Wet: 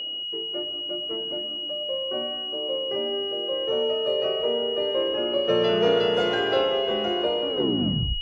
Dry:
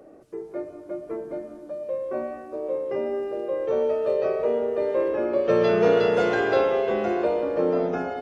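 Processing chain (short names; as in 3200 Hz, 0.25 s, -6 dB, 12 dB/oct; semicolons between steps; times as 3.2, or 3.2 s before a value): tape stop at the end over 0.73 s; whine 2900 Hz -27 dBFS; gain -2 dB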